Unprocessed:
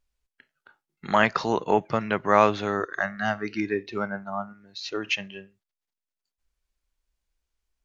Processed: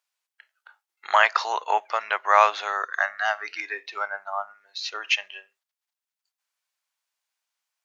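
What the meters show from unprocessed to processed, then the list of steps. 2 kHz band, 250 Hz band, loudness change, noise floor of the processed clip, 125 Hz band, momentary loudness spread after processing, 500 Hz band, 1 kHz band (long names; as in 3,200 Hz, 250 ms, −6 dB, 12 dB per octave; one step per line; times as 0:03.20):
+4.0 dB, below −25 dB, +1.5 dB, below −85 dBFS, below −40 dB, 14 LU, −5.0 dB, +3.5 dB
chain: high-pass filter 710 Hz 24 dB per octave
level +4 dB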